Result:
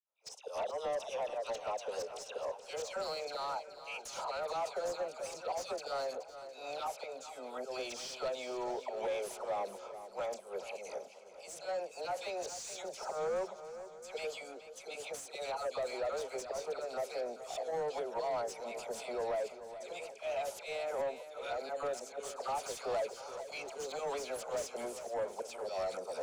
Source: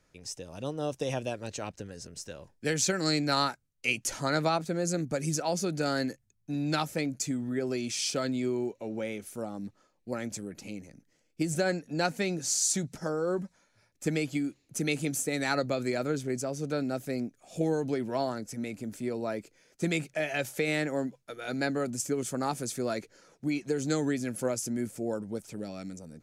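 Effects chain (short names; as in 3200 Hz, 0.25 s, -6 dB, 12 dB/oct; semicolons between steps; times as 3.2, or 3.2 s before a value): recorder AGC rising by 22 dB/s; gate -49 dBFS, range -28 dB; HPF 420 Hz 24 dB/oct; high shelf 11000 Hz -7.5 dB; auto swell 0.155 s; limiter -29 dBFS, peak gain reduction 12.5 dB; 22.41–24.82 sample leveller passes 1; fixed phaser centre 740 Hz, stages 4; dispersion lows, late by 84 ms, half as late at 1400 Hz; overdrive pedal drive 19 dB, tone 1500 Hz, clips at -25.5 dBFS; swung echo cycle 0.711 s, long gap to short 1.5:1, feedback 34%, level -12 dB; mismatched tape noise reduction decoder only; gain -1 dB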